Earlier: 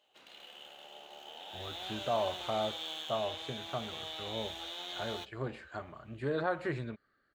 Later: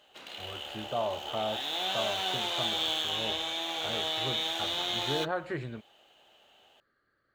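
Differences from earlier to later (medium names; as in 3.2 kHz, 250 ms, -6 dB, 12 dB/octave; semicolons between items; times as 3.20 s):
speech: entry -1.15 s; background +10.5 dB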